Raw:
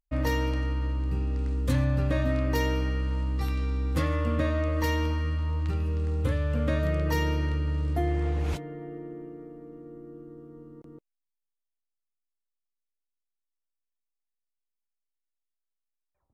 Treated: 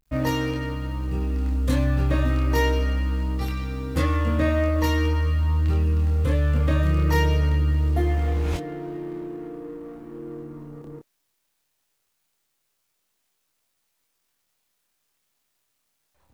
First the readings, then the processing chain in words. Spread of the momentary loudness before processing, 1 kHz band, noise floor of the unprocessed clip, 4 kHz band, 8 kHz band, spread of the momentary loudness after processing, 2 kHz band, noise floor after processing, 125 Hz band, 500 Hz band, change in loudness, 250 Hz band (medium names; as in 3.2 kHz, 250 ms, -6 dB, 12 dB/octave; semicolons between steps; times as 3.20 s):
18 LU, +4.5 dB, -85 dBFS, +4.5 dB, +4.5 dB, 16 LU, +4.5 dB, -74 dBFS, +5.0 dB, +4.0 dB, +4.5 dB, +4.5 dB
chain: companding laws mixed up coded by mu; chorus 0.22 Hz, depth 5.7 ms; trim +6.5 dB